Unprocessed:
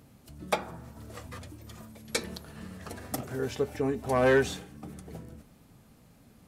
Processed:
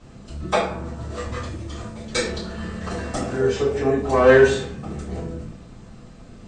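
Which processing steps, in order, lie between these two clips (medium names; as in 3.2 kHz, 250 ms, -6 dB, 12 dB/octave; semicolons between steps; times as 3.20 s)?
steep low-pass 8.5 kHz 72 dB/octave; in parallel at -0.5 dB: compression, threshold -38 dBFS, peak gain reduction 17.5 dB; on the sum: simulated room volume 58 m³, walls mixed, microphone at 3.5 m; trim -7.5 dB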